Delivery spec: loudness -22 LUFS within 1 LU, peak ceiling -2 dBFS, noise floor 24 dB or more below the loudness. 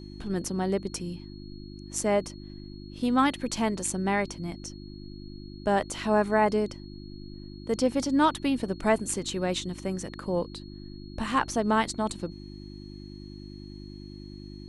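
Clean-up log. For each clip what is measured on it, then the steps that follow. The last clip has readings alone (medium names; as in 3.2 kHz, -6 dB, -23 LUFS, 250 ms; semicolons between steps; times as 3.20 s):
hum 50 Hz; highest harmonic 350 Hz; hum level -42 dBFS; steady tone 4.3 kHz; tone level -53 dBFS; loudness -28.0 LUFS; peak level -10.0 dBFS; loudness target -22.0 LUFS
-> de-hum 50 Hz, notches 7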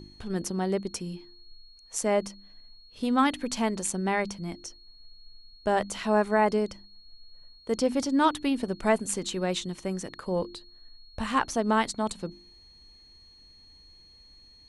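hum not found; steady tone 4.3 kHz; tone level -53 dBFS
-> band-stop 4.3 kHz, Q 30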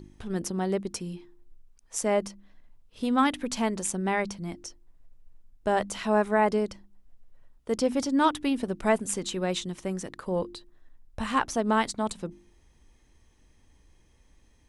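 steady tone not found; loudness -28.5 LUFS; peak level -10.5 dBFS; loudness target -22.0 LUFS
-> trim +6.5 dB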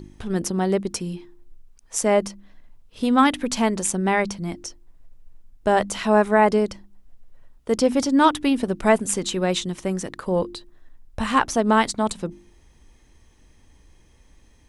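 loudness -22.0 LUFS; peak level -4.0 dBFS; noise floor -55 dBFS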